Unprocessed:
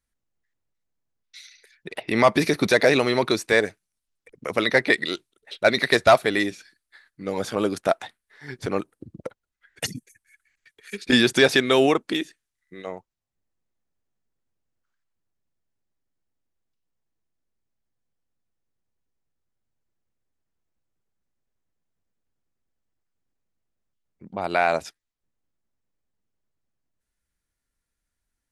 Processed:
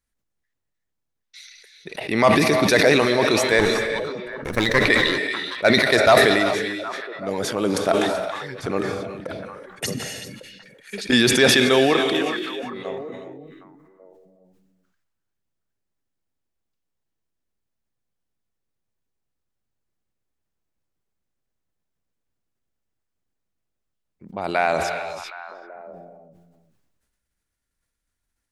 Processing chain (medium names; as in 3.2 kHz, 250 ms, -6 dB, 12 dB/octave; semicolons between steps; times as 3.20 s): 3.59–4.79 s: comb filter that takes the minimum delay 0.51 ms; repeats whose band climbs or falls 383 ms, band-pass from 3.2 kHz, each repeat -1.4 oct, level -9 dB; gated-style reverb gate 410 ms rising, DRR 8.5 dB; decay stretcher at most 31 dB/s